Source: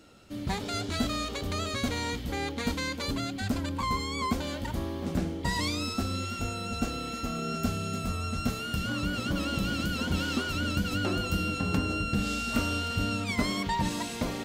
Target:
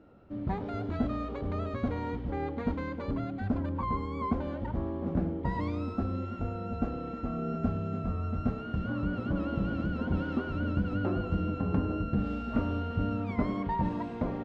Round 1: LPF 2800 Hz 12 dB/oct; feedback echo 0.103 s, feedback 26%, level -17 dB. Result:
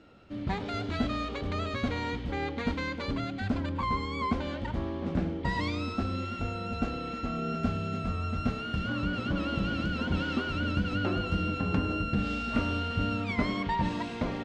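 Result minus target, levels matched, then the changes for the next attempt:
2000 Hz band +7.5 dB
change: LPF 1100 Hz 12 dB/oct

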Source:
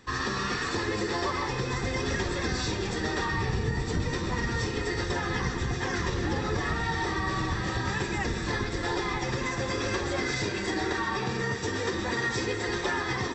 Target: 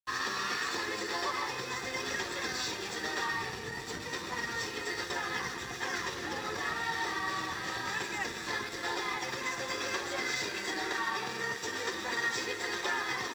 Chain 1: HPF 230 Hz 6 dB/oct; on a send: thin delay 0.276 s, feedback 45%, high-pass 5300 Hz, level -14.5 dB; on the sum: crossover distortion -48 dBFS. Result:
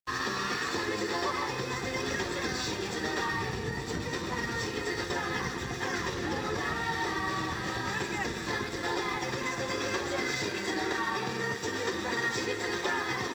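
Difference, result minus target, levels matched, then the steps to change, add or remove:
250 Hz band +5.5 dB
change: HPF 800 Hz 6 dB/oct

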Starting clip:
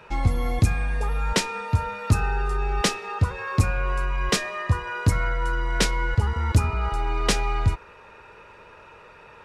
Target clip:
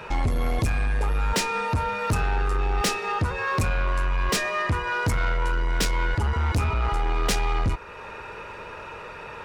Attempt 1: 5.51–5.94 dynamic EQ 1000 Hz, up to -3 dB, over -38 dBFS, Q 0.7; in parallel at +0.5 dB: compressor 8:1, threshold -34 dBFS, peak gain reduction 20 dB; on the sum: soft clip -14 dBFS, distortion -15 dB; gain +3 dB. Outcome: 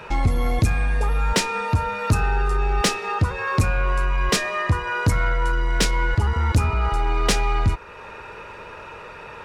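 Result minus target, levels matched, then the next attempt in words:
soft clip: distortion -7 dB
5.51–5.94 dynamic EQ 1000 Hz, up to -3 dB, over -38 dBFS, Q 0.7; in parallel at +0.5 dB: compressor 8:1, threshold -34 dBFS, peak gain reduction 20 dB; on the sum: soft clip -22 dBFS, distortion -8 dB; gain +3 dB

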